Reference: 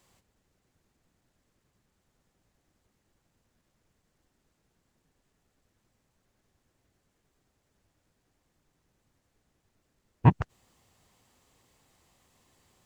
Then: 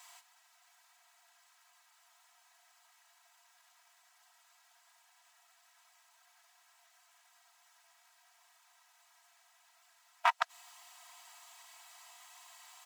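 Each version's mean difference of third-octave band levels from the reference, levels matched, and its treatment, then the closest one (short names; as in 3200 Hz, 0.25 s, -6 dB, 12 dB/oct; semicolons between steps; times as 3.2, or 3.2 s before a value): 19.5 dB: in parallel at -0.5 dB: compressor, threshold -27 dBFS, peak gain reduction 14 dB; on the sum: hard clip -19.5 dBFS, distortion -5 dB; brick-wall FIR high-pass 670 Hz; comb 3.1 ms, depth 90%; gain +4.5 dB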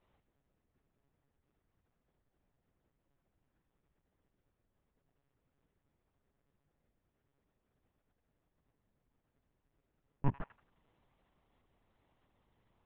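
5.0 dB: high shelf 2300 Hz -10 dB; compressor, threshold -20 dBFS, peak gain reduction 8 dB; on a send: thin delay 88 ms, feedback 33%, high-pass 1400 Hz, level -10.5 dB; on the sum: monotone LPC vocoder at 8 kHz 140 Hz; gain -5.5 dB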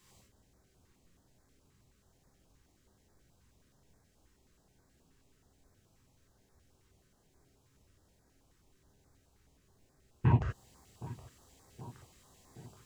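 7.0 dB: compressor 12:1, threshold -25 dBFS, peak gain reduction 13.5 dB; tape echo 0.771 s, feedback 82%, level -14.5 dB, low-pass 2100 Hz; non-linear reverb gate 0.11 s flat, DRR -3.5 dB; stepped notch 9.4 Hz 660–2900 Hz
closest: second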